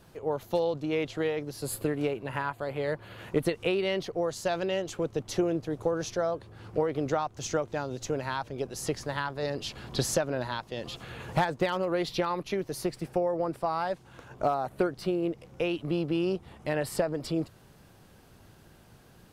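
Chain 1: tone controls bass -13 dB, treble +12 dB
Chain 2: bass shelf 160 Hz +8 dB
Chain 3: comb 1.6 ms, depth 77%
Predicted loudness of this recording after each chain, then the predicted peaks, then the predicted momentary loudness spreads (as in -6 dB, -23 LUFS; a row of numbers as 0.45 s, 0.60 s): -30.5 LUFS, -30.0 LUFS, -29.5 LUFS; -10.0 dBFS, -11.0 dBFS, -11.5 dBFS; 7 LU, 6 LU, 8 LU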